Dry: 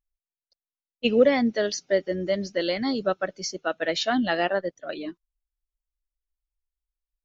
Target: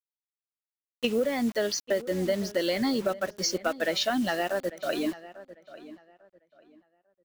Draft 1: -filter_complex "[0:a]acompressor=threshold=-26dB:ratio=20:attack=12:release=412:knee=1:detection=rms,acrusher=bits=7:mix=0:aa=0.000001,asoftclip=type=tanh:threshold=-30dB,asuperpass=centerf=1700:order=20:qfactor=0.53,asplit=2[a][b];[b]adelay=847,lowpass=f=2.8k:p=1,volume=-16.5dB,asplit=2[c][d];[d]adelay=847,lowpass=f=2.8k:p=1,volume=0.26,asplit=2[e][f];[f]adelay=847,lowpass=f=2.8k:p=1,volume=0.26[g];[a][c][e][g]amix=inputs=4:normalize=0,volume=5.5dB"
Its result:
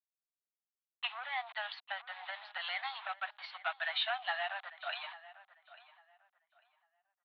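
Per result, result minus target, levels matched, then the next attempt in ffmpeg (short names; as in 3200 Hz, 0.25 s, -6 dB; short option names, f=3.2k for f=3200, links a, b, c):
soft clip: distortion +11 dB; 2000 Hz band +7.0 dB
-filter_complex "[0:a]acompressor=threshold=-26dB:ratio=20:attack=12:release=412:knee=1:detection=rms,acrusher=bits=7:mix=0:aa=0.000001,asoftclip=type=tanh:threshold=-20.5dB,asuperpass=centerf=1700:order=20:qfactor=0.53,asplit=2[a][b];[b]adelay=847,lowpass=f=2.8k:p=1,volume=-16.5dB,asplit=2[c][d];[d]adelay=847,lowpass=f=2.8k:p=1,volume=0.26,asplit=2[e][f];[f]adelay=847,lowpass=f=2.8k:p=1,volume=0.26[g];[a][c][e][g]amix=inputs=4:normalize=0,volume=5.5dB"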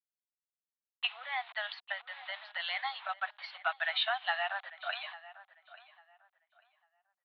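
2000 Hz band +7.5 dB
-filter_complex "[0:a]acompressor=threshold=-26dB:ratio=20:attack=12:release=412:knee=1:detection=rms,acrusher=bits=7:mix=0:aa=0.000001,asoftclip=type=tanh:threshold=-20.5dB,asplit=2[a][b];[b]adelay=847,lowpass=f=2.8k:p=1,volume=-16.5dB,asplit=2[c][d];[d]adelay=847,lowpass=f=2.8k:p=1,volume=0.26,asplit=2[e][f];[f]adelay=847,lowpass=f=2.8k:p=1,volume=0.26[g];[a][c][e][g]amix=inputs=4:normalize=0,volume=5.5dB"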